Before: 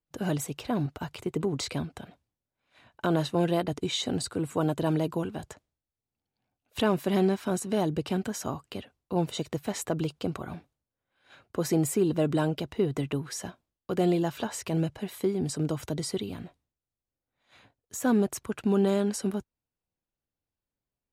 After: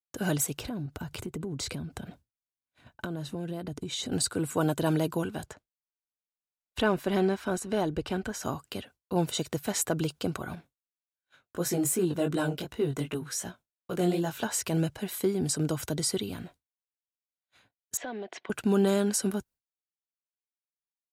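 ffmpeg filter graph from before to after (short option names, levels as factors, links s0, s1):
-filter_complex "[0:a]asettb=1/sr,asplit=3[s0][s1][s2];[s0]atrim=end=0.584[s3];[s1]atrim=start=0.58:end=4.12,asetpts=PTS-STARTPTS,afade=t=in:d=0.004:c=qsin,afade=t=out:st=3.536:d=0.004:c=qsin,lowshelf=f=420:g=11.5,acompressor=threshold=0.0178:ratio=4:attack=3.2:release=140:knee=1:detection=peak[s4];[s2]atrim=start=4.116[s5];[s3][s4]acrossfade=d=0.004:c1=hsin:c2=qsin[s6];[s6][s5]acrossfade=d=0.004:c1=qsin:c2=hsin,asettb=1/sr,asplit=3[s7][s8][s9];[s7]atrim=end=5.464[s10];[s8]atrim=start=5.46:end=8.43,asetpts=PTS-STARTPTS,afade=t=in:d=0.004:c=qsin,afade=t=out:st=2.966:d=0.004:c=qsin,lowpass=f=2700:p=1,asubboost=boost=12:cutoff=50[s11];[s9]atrim=start=8.426[s12];[s10][s11]acrossfade=d=0.004:c1=hsin:c2=qsin[s13];[s13][s12]acrossfade=d=0.004:c1=qsin:c2=hsin,asettb=1/sr,asplit=3[s14][s15][s16];[s14]atrim=end=10.554[s17];[s15]atrim=start=10.55:end=14.43,asetpts=PTS-STARTPTS,afade=t=in:d=0.004:c=qsin,afade=t=out:st=3.876:d=0.004:c=qsin,flanger=delay=16.5:depth=5.9:speed=2.7,bandreject=f=4800:w=18[s18];[s16]atrim=start=14.426[s19];[s17][s18]acrossfade=d=0.004:c1=hsin:c2=qsin[s20];[s20][s19]acrossfade=d=0.004:c1=qsin:c2=hsin,asettb=1/sr,asplit=3[s21][s22][s23];[s21]atrim=end=17.974[s24];[s22]atrim=start=17.97:end=18.5,asetpts=PTS-STARTPTS,afade=t=in:d=0.004:c=qsin,afade=t=out:st=0.526:d=0.004:c=qsin,highpass=f=250:w=0.5412,highpass=f=250:w=1.3066,equalizer=f=270:t=q:w=4:g=-5,equalizer=f=690:t=q:w=4:g=9,equalizer=f=1300:t=q:w=4:g=-7,equalizer=f=2000:t=q:w=4:g=9,equalizer=f=3200:t=q:w=4:g=5,lowpass=f=4000:w=0.5412,lowpass=f=4000:w=1.3066,acompressor=threshold=0.0158:ratio=4:attack=3.2:release=140:knee=1:detection=peak[s25];[s23]atrim=start=18.496[s26];[s24][s25]acrossfade=d=0.004:c1=hsin:c2=qsin[s27];[s27][s26]acrossfade=d=0.004:c1=qsin:c2=hsin,highshelf=f=4900:g=10,agate=range=0.0224:threshold=0.00398:ratio=3:detection=peak,equalizer=f=1500:w=7.3:g=6"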